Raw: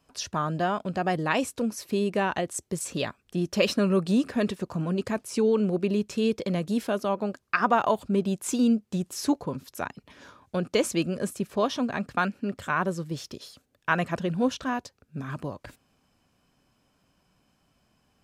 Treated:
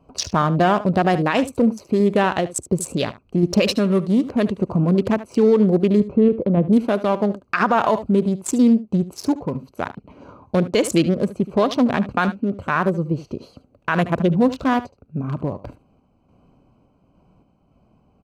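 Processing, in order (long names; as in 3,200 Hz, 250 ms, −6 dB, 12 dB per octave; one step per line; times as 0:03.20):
adaptive Wiener filter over 25 samples
0:06.00–0:06.73: low-pass filter 1,200 Hz 12 dB per octave
in parallel at +1.5 dB: downward compressor, threshold −33 dBFS, peak gain reduction 15.5 dB
on the sum: sample-and-hold tremolo
single-tap delay 74 ms −16 dB
boost into a limiter +15.5 dB
level −6.5 dB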